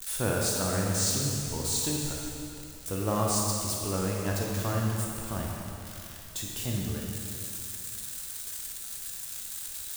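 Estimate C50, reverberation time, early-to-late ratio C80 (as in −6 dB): −0.5 dB, 2.7 s, 1.0 dB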